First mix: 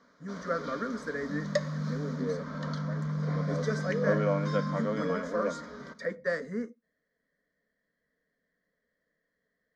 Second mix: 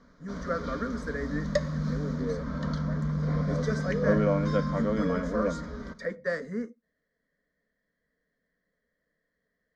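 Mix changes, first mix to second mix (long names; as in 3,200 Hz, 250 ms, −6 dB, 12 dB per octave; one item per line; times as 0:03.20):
first sound: remove high-pass filter 390 Hz 6 dB per octave
master: add low-shelf EQ 100 Hz +8 dB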